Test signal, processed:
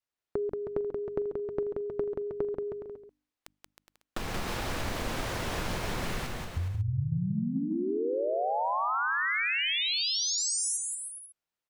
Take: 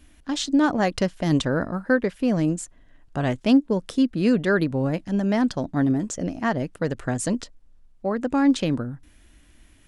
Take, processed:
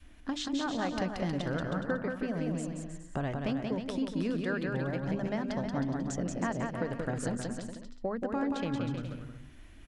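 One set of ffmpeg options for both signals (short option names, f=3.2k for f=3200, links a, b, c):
-filter_complex "[0:a]lowpass=f=2.9k:p=1,bandreject=f=50:t=h:w=6,bandreject=f=100:t=h:w=6,bandreject=f=150:t=h:w=6,bandreject=f=200:t=h:w=6,bandreject=f=250:t=h:w=6,bandreject=f=300:t=h:w=6,adynamicequalizer=threshold=0.02:dfrequency=340:dqfactor=0.9:tfrequency=340:tqfactor=0.9:attack=5:release=100:ratio=0.375:range=3.5:mode=cutabove:tftype=bell,acompressor=threshold=-31dB:ratio=6,asplit=2[a][b];[b]aecho=0:1:180|315|416.2|492.2|549.1:0.631|0.398|0.251|0.158|0.1[c];[a][c]amix=inputs=2:normalize=0"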